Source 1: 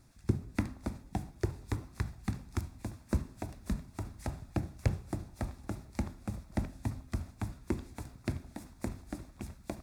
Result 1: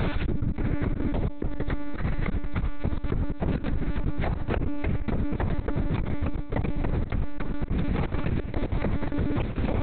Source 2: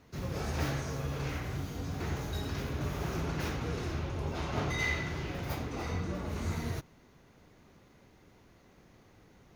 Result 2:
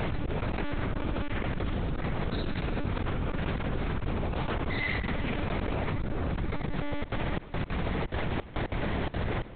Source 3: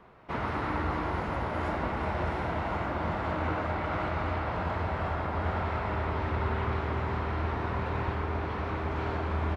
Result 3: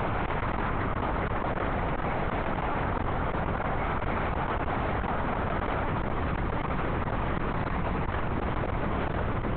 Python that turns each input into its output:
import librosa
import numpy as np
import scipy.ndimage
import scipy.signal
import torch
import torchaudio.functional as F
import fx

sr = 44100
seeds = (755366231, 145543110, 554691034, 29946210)

y = fx.dynamic_eq(x, sr, hz=180.0, q=1.7, threshold_db=-50.0, ratio=4.0, max_db=3)
y = fx.comb_fb(y, sr, f0_hz=100.0, decay_s=1.6, harmonics='all', damping=0.0, mix_pct=70)
y = fx.step_gate(y, sr, bpm=177, pattern='xxx..x.xxxx.', floor_db=-24.0, edge_ms=4.5)
y = fx.lpc_monotone(y, sr, seeds[0], pitch_hz=290.0, order=8)
y = fx.env_flatten(y, sr, amount_pct=100)
y = y * 10.0 ** (8.0 / 20.0)